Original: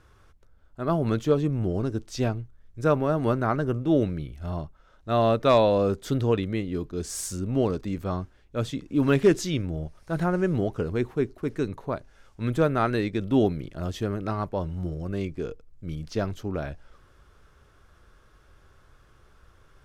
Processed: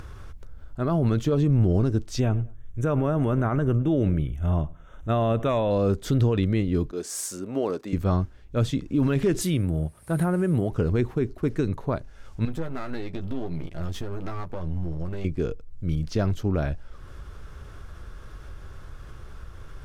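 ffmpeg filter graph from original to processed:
ffmpeg -i in.wav -filter_complex "[0:a]asettb=1/sr,asplit=3[link_01][link_02][link_03];[link_01]atrim=end=2.204[link_04];[link_02]atrim=start=2.2:end=5.71,asetpts=PTS-STARTPTS,afade=type=in:duration=0.004:curve=qsin,afade=type=out:start_time=3.506:duration=0.004:curve=qsin,asuperstop=centerf=4600:order=8:qfactor=2.2,asplit=2[link_05][link_06];[link_06]adelay=105,lowpass=frequency=2100:poles=1,volume=-23dB,asplit=2[link_07][link_08];[link_08]adelay=105,lowpass=frequency=2100:poles=1,volume=0.33[link_09];[link_05][link_07][link_09]amix=inputs=3:normalize=0,atrim=end_sample=154791[link_10];[link_03]atrim=start=5.706[link_11];[link_04][link_10]acrossfade=duration=0.004:curve1=hsin:curve2=qsin[link_12];[link_12][link_11]acrossfade=duration=0.004:curve1=qsin:curve2=hsin,asettb=1/sr,asplit=3[link_13][link_14][link_15];[link_13]atrim=end=6.914[link_16];[link_14]atrim=start=6.91:end=7.93,asetpts=PTS-STARTPTS,afade=type=in:duration=0.004:curve=qsin,afade=type=out:start_time=1.016:duration=0.004:curve=qsin,highpass=380,equalizer=frequency=3800:width_type=o:width=1.7:gain=-3.5[link_17];[link_15]atrim=start=7.926[link_18];[link_16][link_17]acrossfade=duration=0.004:curve1=hsin:curve2=qsin[link_19];[link_19][link_18]acrossfade=duration=0.004:curve1=qsin:curve2=hsin,asettb=1/sr,asplit=3[link_20][link_21][link_22];[link_20]atrim=end=9.414[link_23];[link_21]atrim=start=9.41:end=10.71,asetpts=PTS-STARTPTS,afade=type=in:duration=0.004:curve=qsin,afade=type=out:start_time=1.296:duration=0.004:curve=qsin,highpass=81,highshelf=frequency=7600:width_type=q:width=3:gain=9,acompressor=threshold=-26dB:ratio=2.5:attack=3.2:release=140:knee=1:detection=peak[link_24];[link_22]atrim=start=10.706[link_25];[link_23][link_24]acrossfade=duration=0.004:curve1=hsin:curve2=qsin[link_26];[link_26][link_25]acrossfade=duration=0.004:curve1=qsin:curve2=hsin,asettb=1/sr,asplit=3[link_27][link_28][link_29];[link_27]atrim=end=12.454[link_30];[link_28]atrim=start=12.45:end=15.25,asetpts=PTS-STARTPTS,afade=type=in:duration=0.004:curve=qsin,afade=type=out:start_time=2.796:duration=0.004:curve=qsin,aeval=exprs='if(lt(val(0),0),0.251*val(0),val(0))':channel_layout=same,acompressor=threshold=-35dB:ratio=4:attack=3.2:release=140:knee=1:detection=peak,asplit=2[link_31][link_32];[link_32]adelay=12,volume=-6dB[link_33];[link_31][link_33]amix=inputs=2:normalize=0,atrim=end_sample=123480[link_34];[link_29]atrim=start=15.246[link_35];[link_30][link_34]acrossfade=duration=0.004:curve1=hsin:curve2=qsin[link_36];[link_36][link_35]acrossfade=duration=0.004:curve1=qsin:curve2=hsin,alimiter=limit=-20dB:level=0:latency=1:release=40,acompressor=mode=upward:threshold=-40dB:ratio=2.5,lowshelf=frequency=180:gain=8.5,volume=2.5dB" out.wav

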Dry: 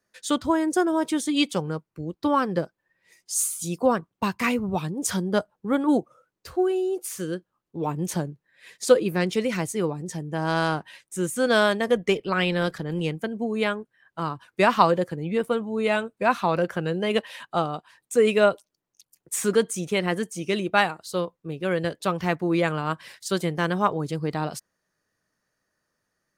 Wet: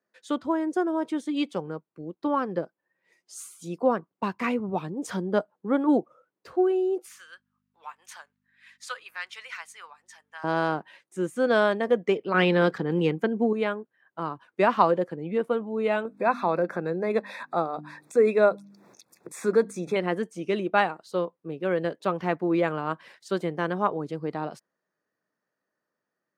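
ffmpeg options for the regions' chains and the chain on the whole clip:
ffmpeg -i in.wav -filter_complex "[0:a]asettb=1/sr,asplit=3[link_01][link_02][link_03];[link_01]atrim=end=7.064[link_04];[link_02]atrim=start=7.06:end=10.44,asetpts=PTS-STARTPTS,afade=type=in:duration=0.004:curve=qsin,afade=type=out:start_time=3.376:duration=0.004:curve=qsin,highpass=frequency=1200:width=0.5412,highpass=frequency=1200:width=1.3066,aeval=exprs='val(0)+0.000447*(sin(2*PI*50*n/s)+sin(2*PI*2*50*n/s)/2+sin(2*PI*3*50*n/s)/3+sin(2*PI*4*50*n/s)/4+sin(2*PI*5*50*n/s)/5)':channel_layout=same[link_05];[link_03]atrim=start=10.436[link_06];[link_04][link_05]acrossfade=duration=0.004:curve1=hsin:curve2=qsin[link_07];[link_07][link_06]acrossfade=duration=0.004:curve1=qsin:curve2=hsin,asettb=1/sr,asplit=3[link_08][link_09][link_10];[link_08]atrim=end=12.344[link_11];[link_09]atrim=start=12.34:end=13.53,asetpts=PTS-STARTPTS,afade=type=in:duration=0.004:curve=qsin,afade=type=out:start_time=1.186:duration=0.004:curve=qsin,equalizer=frequency=10000:width_type=o:width=0.39:gain=-5,acontrast=70,bandreject=frequency=620:width=5.6[link_12];[link_10]atrim=start=13.526[link_13];[link_11][link_12]acrossfade=duration=0.004:curve1=hsin:curve2=qsin[link_14];[link_14][link_13]acrossfade=duration=0.004:curve1=qsin:curve2=hsin,asettb=1/sr,asplit=3[link_15][link_16][link_17];[link_15]atrim=end=16.054[link_18];[link_16]atrim=start=16.05:end=19.96,asetpts=PTS-STARTPTS,afade=type=in:duration=0.004:curve=qsin,afade=type=out:start_time=3.906:duration=0.004:curve=qsin,bandreject=frequency=50:width_type=h:width=6,bandreject=frequency=100:width_type=h:width=6,bandreject=frequency=150:width_type=h:width=6,bandreject=frequency=200:width_type=h:width=6,bandreject=frequency=250:width_type=h:width=6,bandreject=frequency=300:width_type=h:width=6,acompressor=mode=upward:threshold=-23dB:ratio=2.5:attack=3.2:release=140:knee=2.83:detection=peak,asuperstop=centerf=3000:order=12:qfactor=4.3[link_19];[link_17]atrim=start=19.956[link_20];[link_18][link_19]acrossfade=duration=0.004:curve1=hsin:curve2=qsin[link_21];[link_21][link_20]acrossfade=duration=0.004:curve1=qsin:curve2=hsin,lowpass=frequency=1300:poles=1,dynaudnorm=framelen=940:gausssize=9:maxgain=4dB,highpass=220,volume=-2.5dB" out.wav

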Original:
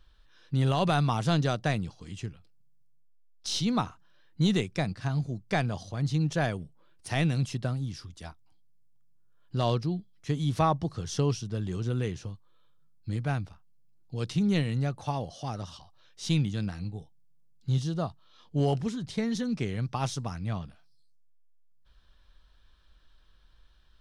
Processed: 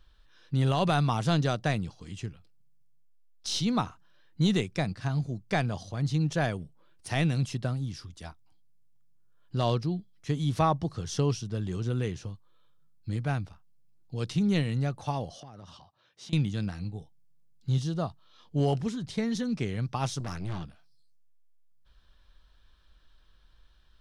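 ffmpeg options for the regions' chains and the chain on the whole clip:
ffmpeg -i in.wav -filter_complex "[0:a]asettb=1/sr,asplit=3[link_01][link_02][link_03];[link_01]atrim=end=15.404[link_04];[link_02]atrim=start=15.4:end=16.33,asetpts=PTS-STARTPTS,afade=type=in:duration=0.004:curve=qsin,afade=type=out:start_time=0.926:duration=0.004:curve=qsin,highpass=100,highshelf=frequency=4400:gain=-11,acompressor=threshold=-42dB:ratio=10:attack=3.2:release=140:knee=1:detection=peak[link_05];[link_03]atrim=start=16.326[link_06];[link_04][link_05]acrossfade=duration=0.004:curve1=hsin:curve2=qsin[link_07];[link_07][link_06]acrossfade=duration=0.004:curve1=qsin:curve2=hsin,asettb=1/sr,asplit=3[link_08][link_09][link_10];[link_08]atrim=end=20.204[link_11];[link_09]atrim=start=20.2:end=20.64,asetpts=PTS-STARTPTS,afade=type=in:duration=0.004:curve=qsin,afade=type=out:start_time=0.436:duration=0.004:curve=qsin,highpass=62,acontrast=53,aeval=exprs='(tanh(35.5*val(0)+0.55)-tanh(0.55))/35.5':channel_layout=same[link_12];[link_10]atrim=start=20.636[link_13];[link_11][link_12]acrossfade=duration=0.004:curve1=hsin:curve2=qsin[link_14];[link_14][link_13]acrossfade=duration=0.004:curve1=qsin:curve2=hsin" out.wav

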